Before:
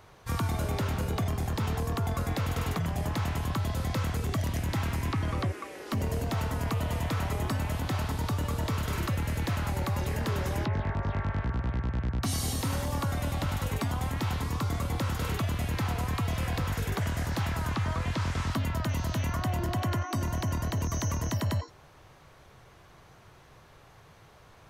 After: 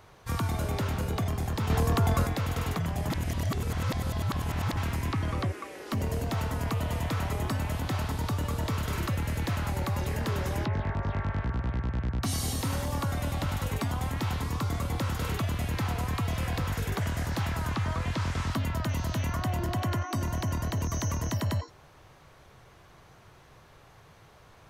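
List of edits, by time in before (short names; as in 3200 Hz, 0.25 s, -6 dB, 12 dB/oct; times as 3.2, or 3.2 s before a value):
1.7–2.27 gain +5.5 dB
3.1–4.77 reverse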